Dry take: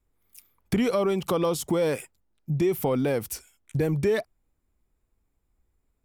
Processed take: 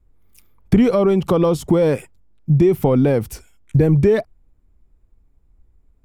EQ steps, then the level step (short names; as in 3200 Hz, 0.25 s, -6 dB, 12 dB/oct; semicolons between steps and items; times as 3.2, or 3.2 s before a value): tilt -2.5 dB/oct; +5.5 dB